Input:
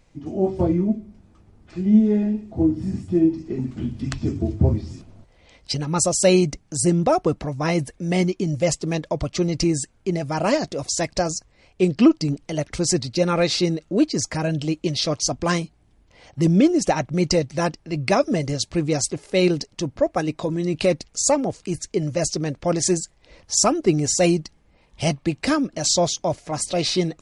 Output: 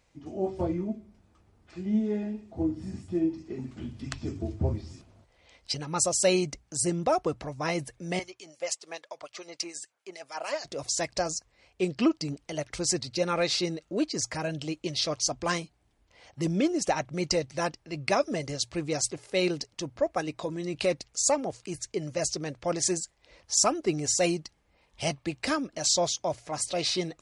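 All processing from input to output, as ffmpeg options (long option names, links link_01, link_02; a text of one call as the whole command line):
ffmpeg -i in.wav -filter_complex "[0:a]asettb=1/sr,asplit=3[link_01][link_02][link_03];[link_01]atrim=end=8.194[link_04];[link_02]atrim=start=8.19:end=10.65,asetpts=PTS-STARTPTS,afade=type=in:duration=0.004:curve=qsin,afade=type=out:start_time=2.456:duration=0.004:curve=qsin,highpass=630,acrossover=split=2000[link_05][link_06];[link_05]aeval=exprs='val(0)*(1-0.7/2+0.7/2*cos(2*PI*6.8*n/s))':channel_layout=same[link_07];[link_06]aeval=exprs='val(0)*(1-0.7/2-0.7/2*cos(2*PI*6.8*n/s))':channel_layout=same[link_08];[link_07][link_08]amix=inputs=2:normalize=0[link_09];[link_03]atrim=start=10.646[link_10];[link_04][link_09]acrossfade=duration=0.004:curve1=hsin:curve2=qsin[link_11];[link_11][link_10]acrossfade=duration=0.004:curve1=qsin:curve2=hsin,highpass=49,equalizer=frequency=180:width_type=o:width=2.3:gain=-7.5,bandreject=frequency=60:width_type=h:width=6,bandreject=frequency=120:width_type=h:width=6,volume=-4.5dB" out.wav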